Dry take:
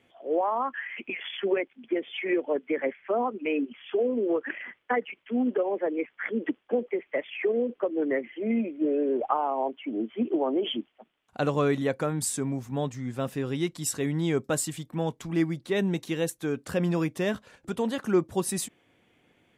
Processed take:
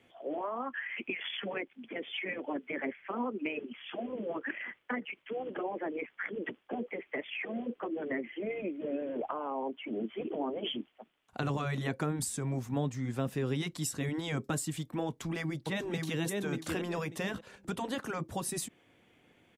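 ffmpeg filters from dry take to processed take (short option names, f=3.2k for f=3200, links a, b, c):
-filter_complex "[0:a]asplit=2[a][b];[b]afade=t=in:st=15.07:d=0.01,afade=t=out:st=16.22:d=0.01,aecho=0:1:590|1180|1770:0.530884|0.0796327|0.0119449[c];[a][c]amix=inputs=2:normalize=0,afftfilt=real='re*lt(hypot(re,im),0.316)':imag='im*lt(hypot(re,im),0.316)':win_size=1024:overlap=0.75,acrossover=split=330[d][e];[e]acompressor=threshold=-34dB:ratio=6[f];[d][f]amix=inputs=2:normalize=0"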